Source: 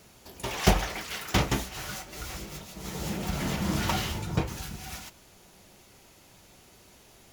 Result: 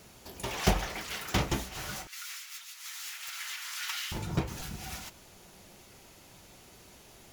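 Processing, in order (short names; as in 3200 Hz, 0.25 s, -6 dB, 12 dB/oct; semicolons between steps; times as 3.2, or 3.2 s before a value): 2.07–4.12 inverse Chebyshev high-pass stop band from 240 Hz, stop band 80 dB; in parallel at 0 dB: compressor, threshold -40 dBFS, peak gain reduction 23 dB; on the sum: crackling interface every 0.22 s, samples 256, repeat, from 0.42; gain -5 dB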